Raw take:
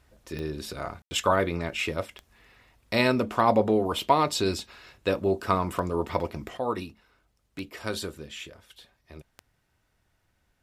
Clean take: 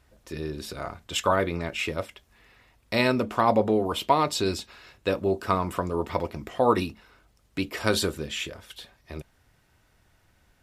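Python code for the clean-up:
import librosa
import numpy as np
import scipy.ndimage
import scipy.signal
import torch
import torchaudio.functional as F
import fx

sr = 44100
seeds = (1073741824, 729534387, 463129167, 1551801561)

y = fx.fix_declick_ar(x, sr, threshold=10.0)
y = fx.fix_ambience(y, sr, seeds[0], print_start_s=9.55, print_end_s=10.05, start_s=1.02, end_s=1.11)
y = fx.fix_level(y, sr, at_s=6.57, step_db=8.0)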